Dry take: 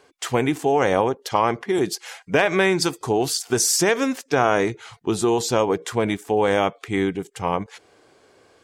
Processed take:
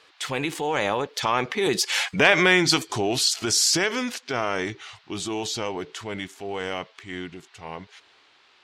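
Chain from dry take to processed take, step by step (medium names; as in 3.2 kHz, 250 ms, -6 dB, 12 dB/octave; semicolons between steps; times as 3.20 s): Doppler pass-by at 2.20 s, 24 m/s, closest 8.4 m; compression 2:1, threshold -34 dBFS, peak gain reduction 11 dB; peaking EQ 3.3 kHz +10.5 dB 2.3 oct; transient shaper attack -4 dB, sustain +3 dB; band noise 750–4300 Hz -68 dBFS; trim +9 dB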